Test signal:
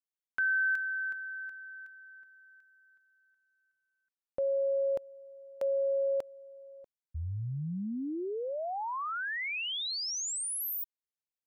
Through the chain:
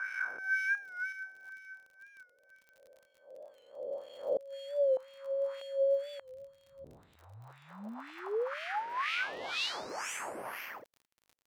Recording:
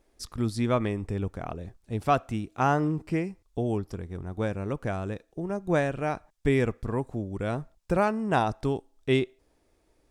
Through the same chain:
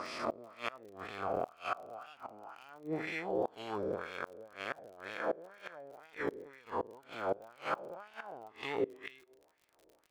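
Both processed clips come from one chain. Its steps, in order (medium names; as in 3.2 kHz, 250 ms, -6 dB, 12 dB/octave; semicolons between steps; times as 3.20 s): reverse spectral sustain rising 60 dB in 2.81 s; treble shelf 4.7 kHz -4.5 dB; in parallel at -6 dB: sample-rate reducer 3.8 kHz, jitter 0%; on the sum: wah-wah 2 Hz 460–2700 Hz, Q 2.1; inverted gate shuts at -22 dBFS, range -24 dB; crackle 41 per s -49 dBFS; warped record 45 rpm, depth 100 cents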